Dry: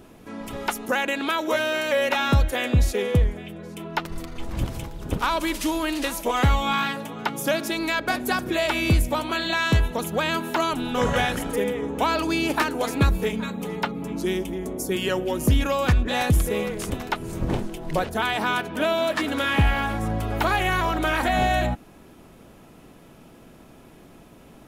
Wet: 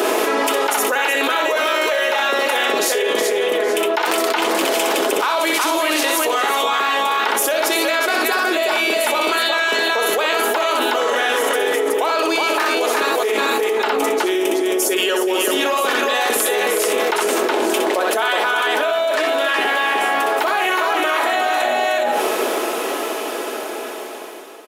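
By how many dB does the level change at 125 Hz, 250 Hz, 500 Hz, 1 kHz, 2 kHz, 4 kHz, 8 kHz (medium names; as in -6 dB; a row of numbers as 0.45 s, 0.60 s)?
under -25 dB, +1.5 dB, +9.0 dB, +8.0 dB, +8.5 dB, +9.5 dB, +12.5 dB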